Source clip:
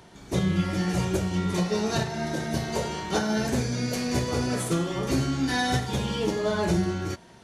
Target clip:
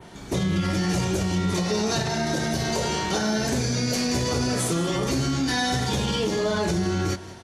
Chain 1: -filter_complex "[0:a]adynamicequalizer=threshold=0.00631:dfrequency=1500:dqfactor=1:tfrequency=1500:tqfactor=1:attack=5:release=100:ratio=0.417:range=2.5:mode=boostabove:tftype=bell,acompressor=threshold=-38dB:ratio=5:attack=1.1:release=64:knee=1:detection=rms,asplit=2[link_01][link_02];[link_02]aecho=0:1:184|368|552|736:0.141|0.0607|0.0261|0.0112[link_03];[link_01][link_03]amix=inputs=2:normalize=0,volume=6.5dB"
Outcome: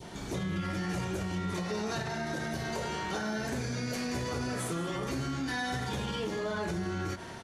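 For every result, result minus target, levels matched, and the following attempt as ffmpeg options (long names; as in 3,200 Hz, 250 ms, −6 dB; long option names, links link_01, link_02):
downward compressor: peak gain reduction +9.5 dB; 2,000 Hz band +3.5 dB
-filter_complex "[0:a]adynamicequalizer=threshold=0.00631:dfrequency=1500:dqfactor=1:tfrequency=1500:tqfactor=1:attack=5:release=100:ratio=0.417:range=2.5:mode=boostabove:tftype=bell,acompressor=threshold=-26dB:ratio=5:attack=1.1:release=64:knee=1:detection=rms,asplit=2[link_01][link_02];[link_02]aecho=0:1:184|368|552|736:0.141|0.0607|0.0261|0.0112[link_03];[link_01][link_03]amix=inputs=2:normalize=0,volume=6.5dB"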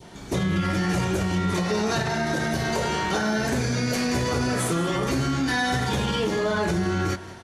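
2,000 Hz band +3.5 dB
-filter_complex "[0:a]adynamicequalizer=threshold=0.00631:dfrequency=5500:dqfactor=1:tfrequency=5500:tqfactor=1:attack=5:release=100:ratio=0.417:range=2.5:mode=boostabove:tftype=bell,acompressor=threshold=-26dB:ratio=5:attack=1.1:release=64:knee=1:detection=rms,asplit=2[link_01][link_02];[link_02]aecho=0:1:184|368|552|736:0.141|0.0607|0.0261|0.0112[link_03];[link_01][link_03]amix=inputs=2:normalize=0,volume=6.5dB"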